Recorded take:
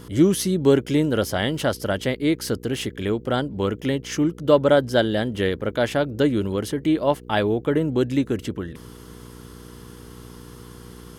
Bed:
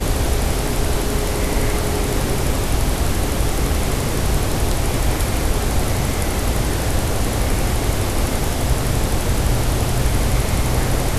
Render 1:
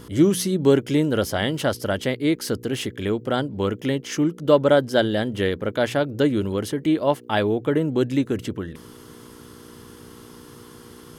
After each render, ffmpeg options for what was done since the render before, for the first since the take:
-af "bandreject=f=60:t=h:w=4,bandreject=f=120:t=h:w=4,bandreject=f=180:t=h:w=4"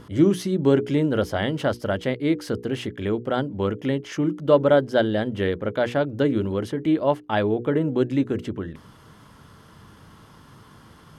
-af "lowpass=f=2.2k:p=1,bandreject=f=60:t=h:w=6,bandreject=f=120:t=h:w=6,bandreject=f=180:t=h:w=6,bandreject=f=240:t=h:w=6,bandreject=f=300:t=h:w=6,bandreject=f=360:t=h:w=6,bandreject=f=420:t=h:w=6,bandreject=f=480:t=h:w=6"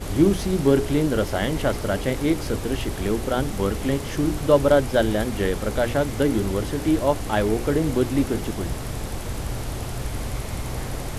-filter_complex "[1:a]volume=-11dB[a];[0:a][a]amix=inputs=2:normalize=0"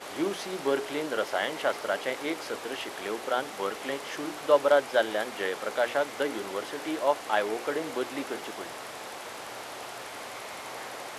-af "highpass=650,highshelf=f=6k:g=-11"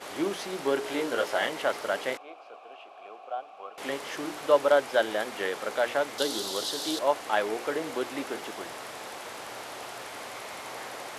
-filter_complex "[0:a]asettb=1/sr,asplit=3[a][b][c];[a]atrim=end=0.834[d];[b]atrim=start=0.83:end=1.49,asetpts=PTS-STARTPTS,afade=t=in:d=0.004:c=qsin,afade=t=out:st=0.656:d=0.004:c=qsin,asplit=2[e][f];[f]adelay=17,volume=-4dB[g];[e][g]amix=inputs=2:normalize=0,atrim=end_sample=29106[h];[c]atrim=start=1.486[i];[d][h]acrossfade=d=0.004:c1=hsin:c2=qsin[j];[j][i]acrossfade=d=0.004:c1=qsin:c2=hsin,asettb=1/sr,asplit=3[k][l][m];[k]atrim=end=2.174[n];[l]atrim=start=2.17:end=3.78,asetpts=PTS-STARTPTS,afade=t=in:d=0.004:c=qsin,afade=t=out:st=1.606:d=0.004:c=qsin,asplit=3[o][p][q];[o]bandpass=f=730:t=q:w=8,volume=0dB[r];[p]bandpass=f=1.09k:t=q:w=8,volume=-6dB[s];[q]bandpass=f=2.44k:t=q:w=8,volume=-9dB[t];[r][s][t]amix=inputs=3:normalize=0[u];[m]atrim=start=3.776[v];[n][u]acrossfade=d=0.004:c1=hsin:c2=qsin[w];[w][v]acrossfade=d=0.004:c1=qsin:c2=hsin,asettb=1/sr,asplit=3[x][y][z];[x]atrim=end=6.184[aa];[y]atrim=start=6.18:end=6.99,asetpts=PTS-STARTPTS,afade=t=in:d=0.004:c=qsin,afade=t=out:st=0.806:d=0.004:c=qsin,highshelf=f=3k:t=q:w=3:g=9[ab];[z]atrim=start=6.986[ac];[aa][ab]acrossfade=d=0.004:c1=hsin:c2=qsin[ad];[ad][ac]acrossfade=d=0.004:c1=qsin:c2=hsin"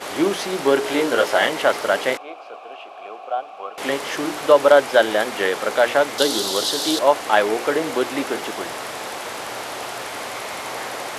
-af "volume=10dB,alimiter=limit=-2dB:level=0:latency=1"

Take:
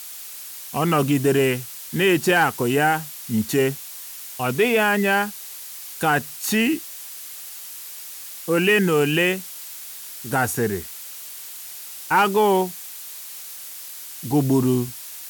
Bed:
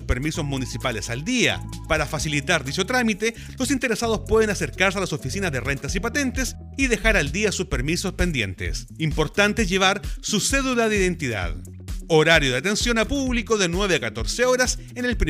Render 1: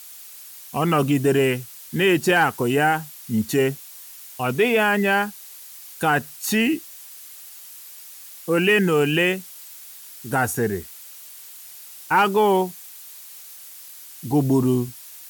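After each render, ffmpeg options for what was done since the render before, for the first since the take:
-af "afftdn=nr=6:nf=-37"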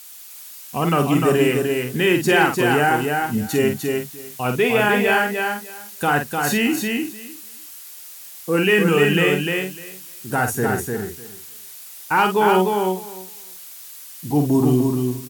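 -filter_complex "[0:a]asplit=2[a][b];[b]adelay=48,volume=-6.5dB[c];[a][c]amix=inputs=2:normalize=0,aecho=1:1:301|602|903:0.631|0.0946|0.0142"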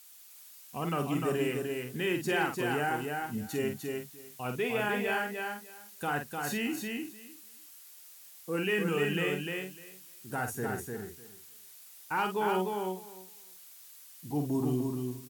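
-af "volume=-13.5dB"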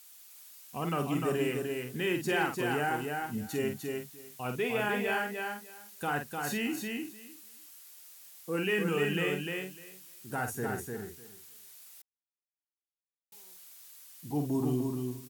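-filter_complex "[0:a]asettb=1/sr,asplit=3[a][b][c];[a]atrim=end=1.464[d];[b]atrim=start=1.46:end=3.21,asetpts=PTS-STARTPTS,afade=t=in:d=0.004:c=qsin,afade=t=out:st=1.746:d=0.004:c=qsin,acrusher=bits=9:mode=log:mix=0:aa=0.000001[e];[c]atrim=start=3.206[f];[d][e]acrossfade=d=0.004:c1=hsin:c2=qsin[g];[g][f]acrossfade=d=0.004:c1=qsin:c2=hsin,asplit=3[h][i][j];[h]atrim=end=12.02,asetpts=PTS-STARTPTS,afade=t=out:st=12.016:d=0.004:c=hsin[k];[i]atrim=start=12.02:end=13.32,asetpts=PTS-STARTPTS,volume=0[l];[j]atrim=start=13.32,asetpts=PTS-STARTPTS,afade=t=in:d=0.004:c=hsin[m];[k][l][m]concat=n=3:v=0:a=1"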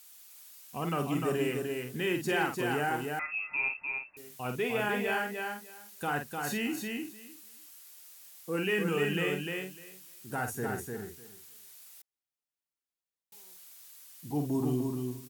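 -filter_complex "[0:a]asettb=1/sr,asplit=3[a][b][c];[a]atrim=end=3.194[d];[b]atrim=start=3.19:end=4.17,asetpts=PTS-STARTPTS,afade=t=in:d=0.004:c=qsin,afade=t=out:st=0.976:d=0.004:c=qsin,lowpass=f=2.4k:t=q:w=0.5098,lowpass=f=2.4k:t=q:w=0.6013,lowpass=f=2.4k:t=q:w=0.9,lowpass=f=2.4k:t=q:w=2.563,afreqshift=-2800[e];[c]atrim=start=4.166[f];[d][e]acrossfade=d=0.004:c1=hsin:c2=qsin[g];[g][f]acrossfade=d=0.004:c1=qsin:c2=hsin"

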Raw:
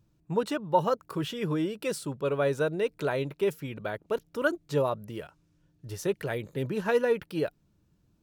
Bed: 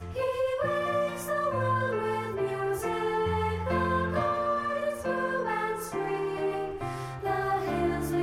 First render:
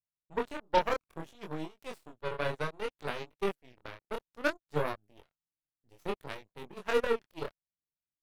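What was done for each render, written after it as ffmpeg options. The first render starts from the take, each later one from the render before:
-af "aeval=exprs='0.299*(cos(1*acos(clip(val(0)/0.299,-1,1)))-cos(1*PI/2))+0.0188*(cos(6*acos(clip(val(0)/0.299,-1,1)))-cos(6*PI/2))+0.0422*(cos(7*acos(clip(val(0)/0.299,-1,1)))-cos(7*PI/2))':c=same,flanger=delay=19.5:depth=8:speed=0.61"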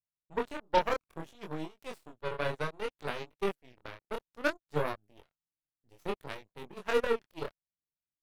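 -af anull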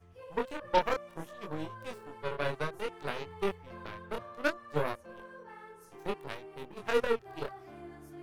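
-filter_complex "[1:a]volume=-20dB[a];[0:a][a]amix=inputs=2:normalize=0"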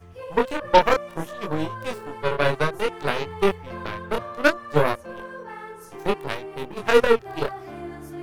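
-af "volume=12dB,alimiter=limit=-1dB:level=0:latency=1"

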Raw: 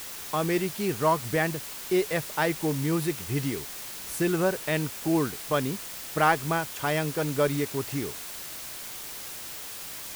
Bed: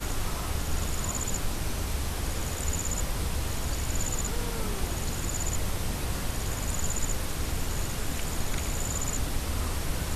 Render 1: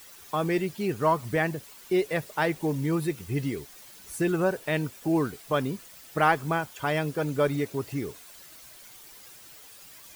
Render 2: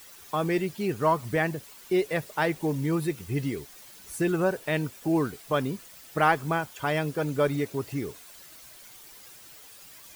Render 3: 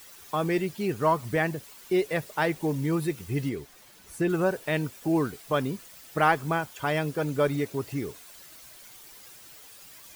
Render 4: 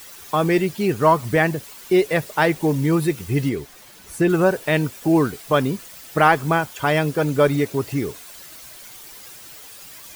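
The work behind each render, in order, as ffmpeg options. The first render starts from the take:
-af "afftdn=nr=12:nf=-39"
-af anull
-filter_complex "[0:a]asettb=1/sr,asplit=3[a][b][c];[a]atrim=end=3.494[d];[b]atrim=start=3.49:end=4.3,asetpts=PTS-STARTPTS,afade=t=in:d=0.004:c=qsin,afade=t=out:st=0.806:d=0.004:c=qsin,highshelf=f=3.4k:g=-6.5[e];[c]atrim=start=4.296[f];[d][e]acrossfade=d=0.004:c1=hsin:c2=qsin[g];[g][f]acrossfade=d=0.004:c1=qsin:c2=hsin"
-af "volume=8dB,alimiter=limit=-2dB:level=0:latency=1"

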